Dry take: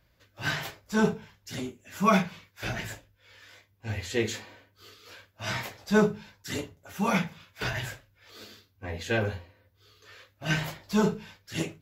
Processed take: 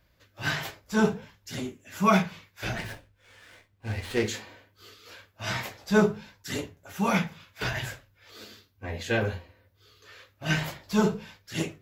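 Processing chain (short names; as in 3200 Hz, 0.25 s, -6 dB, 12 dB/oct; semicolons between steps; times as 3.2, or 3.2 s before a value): flange 1.4 Hz, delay 2.9 ms, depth 6.4 ms, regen -85%; 2.77–4.28 running maximum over 5 samples; gain +5.5 dB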